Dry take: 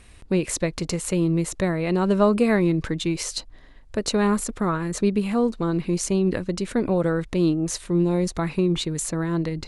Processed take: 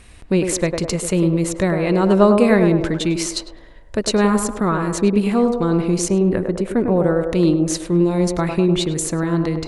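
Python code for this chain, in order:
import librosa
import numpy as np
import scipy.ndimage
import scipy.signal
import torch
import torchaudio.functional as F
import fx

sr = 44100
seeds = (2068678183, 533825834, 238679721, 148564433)

y = fx.peak_eq(x, sr, hz=5000.0, db=-12.0, octaves=1.8, at=(6.08, 7.27))
y = fx.echo_banded(y, sr, ms=102, feedback_pct=60, hz=610.0, wet_db=-4)
y = y * librosa.db_to_amplitude(4.5)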